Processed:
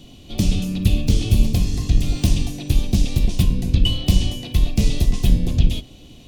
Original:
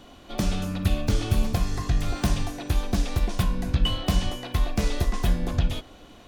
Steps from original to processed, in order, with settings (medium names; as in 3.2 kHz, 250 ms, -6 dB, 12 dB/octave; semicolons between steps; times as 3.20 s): octave divider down 1 oct, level -2 dB; FFT filter 250 Hz 0 dB, 1.5 kHz -18 dB, 2.7 kHz 0 dB; trim +5.5 dB